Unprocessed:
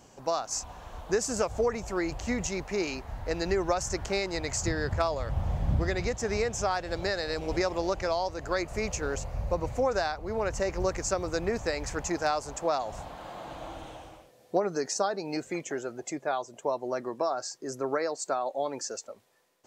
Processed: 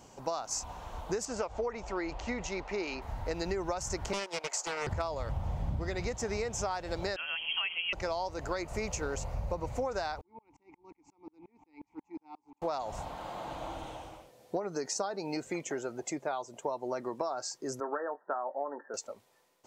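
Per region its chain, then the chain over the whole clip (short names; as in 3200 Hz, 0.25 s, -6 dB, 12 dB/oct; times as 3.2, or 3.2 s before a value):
1.25–3.02 LPF 4300 Hz + bell 120 Hz -10 dB 1.8 oct
4.13–4.87 HPF 440 Hz 24 dB/oct + transient shaper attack +1 dB, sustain -8 dB + Doppler distortion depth 0.42 ms
7.16–7.93 inverted band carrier 3200 Hz + three-band expander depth 70%
10.21–12.62 vowel filter u + dB-ramp tremolo swelling 5.6 Hz, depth 38 dB
17.8–18.94 brick-wall FIR band-pass 160–1900 Hz + tilt +3 dB/oct + doubler 21 ms -11 dB
whole clip: bell 910 Hz +4.5 dB 0.23 oct; notch 1700 Hz, Q 17; compressor 4:1, threshold -31 dBFS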